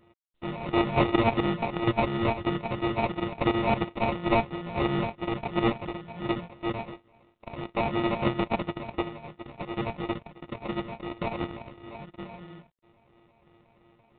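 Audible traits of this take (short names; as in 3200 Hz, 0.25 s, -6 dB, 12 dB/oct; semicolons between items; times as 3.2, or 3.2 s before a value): a buzz of ramps at a fixed pitch in blocks of 128 samples; phasing stages 12, 2.9 Hz, lowest notch 330–1700 Hz; aliases and images of a low sample rate 1600 Hz, jitter 0%; G.726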